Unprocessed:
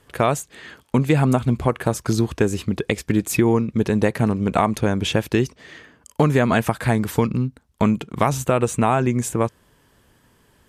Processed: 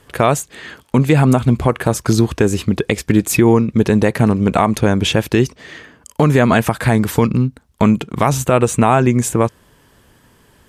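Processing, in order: loudness maximiser +7.5 dB; trim -1 dB

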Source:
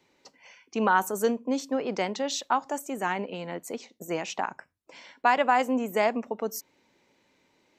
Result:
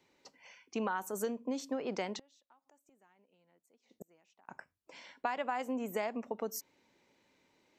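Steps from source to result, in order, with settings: compression 6:1, threshold -27 dBFS, peak gain reduction 10.5 dB; 2.17–4.49 s: inverted gate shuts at -32 dBFS, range -31 dB; trim -4.5 dB

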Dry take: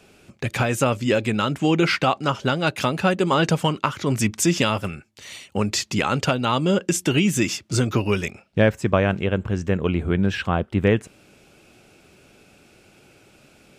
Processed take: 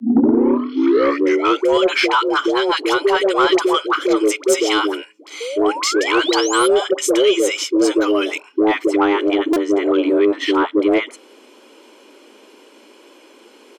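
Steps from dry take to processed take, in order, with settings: tape start-up on the opening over 1.69 s; treble shelf 8.1 kHz -10.5 dB; comb 1 ms, depth 62%; in parallel at +0.5 dB: peak limiter -13 dBFS, peak gain reduction 8.5 dB; on the sum: phase dispersion highs, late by 99 ms, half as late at 530 Hz; painted sound rise, 5.40–6.68 s, 240–11000 Hz -26 dBFS; frequency shift +210 Hz; saturation -5.5 dBFS, distortion -20 dB; buffer glitch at 9.53 s, samples 128, times 10

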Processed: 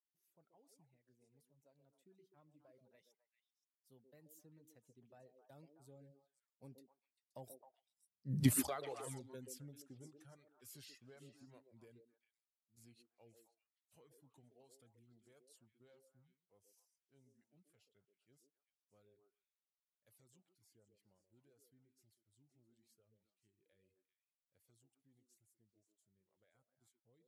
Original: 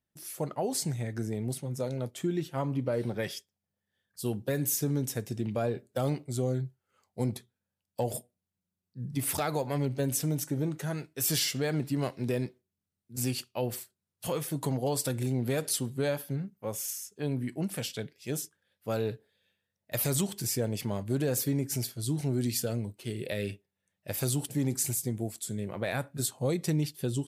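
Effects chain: Doppler pass-by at 8.42 s, 27 m/s, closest 1.4 m; reverb removal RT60 1.3 s; repeats whose band climbs or falls 131 ms, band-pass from 380 Hz, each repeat 1.4 oct, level -3.5 dB; trim +4.5 dB

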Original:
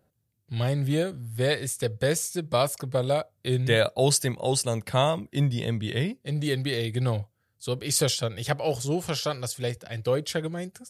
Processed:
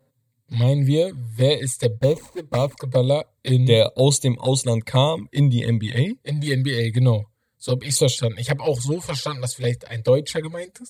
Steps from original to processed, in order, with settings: 1.94–2.76 s: median filter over 25 samples; rippled EQ curve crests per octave 1, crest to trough 9 dB; touch-sensitive flanger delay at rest 7.6 ms, full sweep at -19.5 dBFS; trim +5.5 dB

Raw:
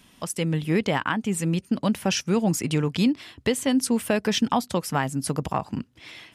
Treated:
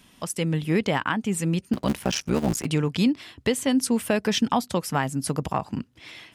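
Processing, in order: 1.73–2.66 s: cycle switcher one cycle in 3, muted

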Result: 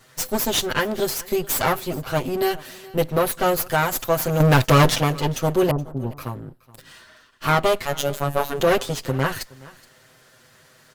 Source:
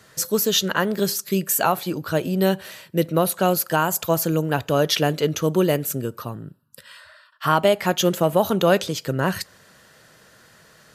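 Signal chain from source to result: comb filter that takes the minimum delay 7.8 ms; 4.40–4.90 s: waveshaping leveller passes 3; 5.71–6.17 s: Bessel low-pass 730 Hz, order 8; 7.85–8.60 s: robot voice 142 Hz; delay 422 ms -21.5 dB

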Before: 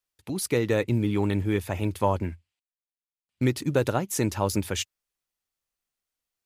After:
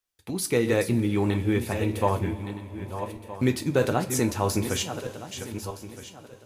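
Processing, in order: backward echo that repeats 634 ms, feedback 47%, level -9 dB; reverberation, pre-delay 3 ms, DRR 5.5 dB

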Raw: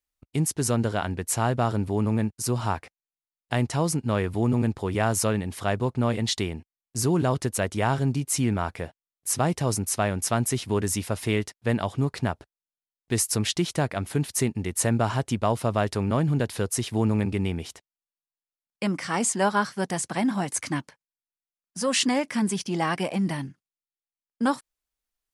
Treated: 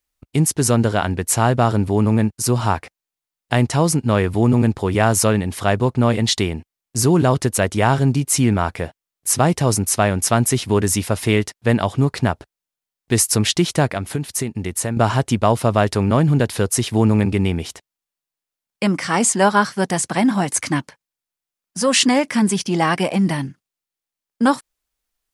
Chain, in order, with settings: 13.90–14.97 s: compression 6:1, threshold -28 dBFS, peak gain reduction 9 dB; trim +8 dB

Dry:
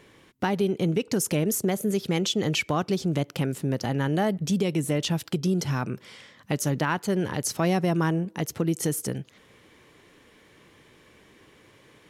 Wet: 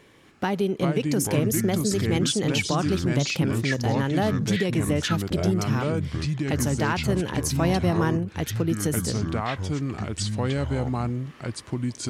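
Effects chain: ever faster or slower copies 248 ms, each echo -5 st, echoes 2

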